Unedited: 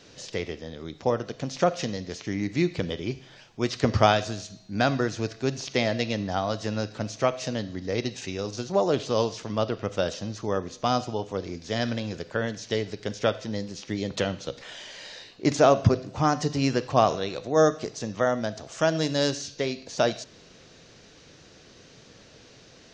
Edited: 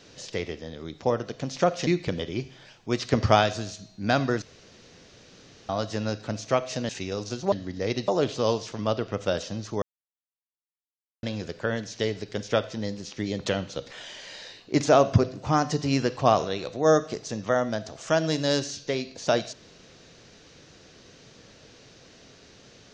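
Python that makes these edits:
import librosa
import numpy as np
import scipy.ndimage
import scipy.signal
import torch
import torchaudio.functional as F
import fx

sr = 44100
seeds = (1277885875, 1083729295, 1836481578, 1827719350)

y = fx.edit(x, sr, fx.cut(start_s=1.87, length_s=0.71),
    fx.room_tone_fill(start_s=5.13, length_s=1.27),
    fx.move(start_s=7.6, length_s=0.56, to_s=8.79),
    fx.silence(start_s=10.53, length_s=1.41), tone=tone)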